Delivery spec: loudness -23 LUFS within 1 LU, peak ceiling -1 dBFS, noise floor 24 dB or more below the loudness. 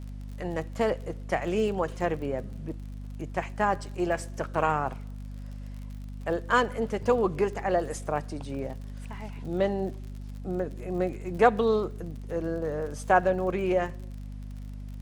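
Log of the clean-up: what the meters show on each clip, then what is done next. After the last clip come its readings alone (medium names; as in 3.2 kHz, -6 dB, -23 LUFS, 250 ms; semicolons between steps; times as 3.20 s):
tick rate 44 per s; hum 50 Hz; highest harmonic 250 Hz; hum level -36 dBFS; loudness -29.0 LUFS; peak level -6.5 dBFS; loudness target -23.0 LUFS
-> de-click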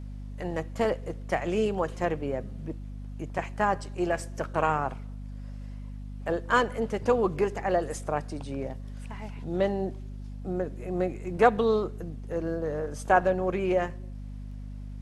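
tick rate 0.067 per s; hum 50 Hz; highest harmonic 250 Hz; hum level -36 dBFS
-> de-hum 50 Hz, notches 5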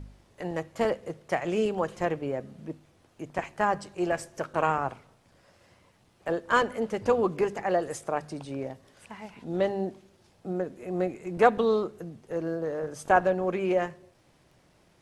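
hum not found; loudness -29.0 LUFS; peak level -6.0 dBFS; loudness target -23.0 LUFS
-> trim +6 dB; peak limiter -1 dBFS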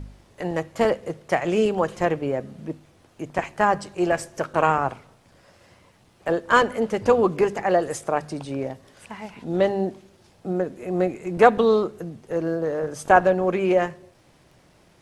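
loudness -23.0 LUFS; peak level -1.0 dBFS; noise floor -57 dBFS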